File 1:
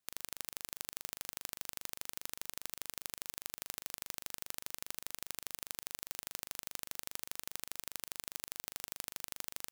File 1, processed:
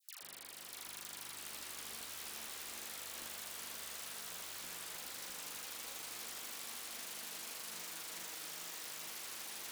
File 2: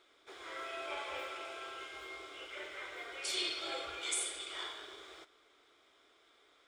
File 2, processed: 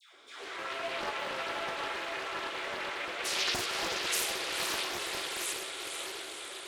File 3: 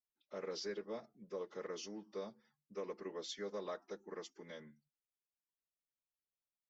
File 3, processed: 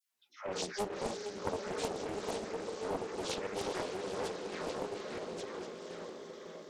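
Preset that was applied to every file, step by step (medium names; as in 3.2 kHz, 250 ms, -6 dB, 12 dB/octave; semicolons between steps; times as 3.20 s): backward echo that repeats 689 ms, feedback 41%, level -5 dB; in parallel at +1.5 dB: compression, threshold -54 dBFS; on the sum: saturation -20.5 dBFS; hum notches 50/100/150/200 Hz; chorus voices 4, 0.77 Hz, delay 14 ms, depth 3.7 ms; high-pass 100 Hz 12 dB/octave; on a send: echo that smears into a reverb 495 ms, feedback 66%, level -5.5 dB; on the sum: vibrato 8.3 Hz 6.9 cents; phase dispersion lows, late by 148 ms, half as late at 1 kHz; loudspeaker Doppler distortion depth 0.77 ms; trim +6.5 dB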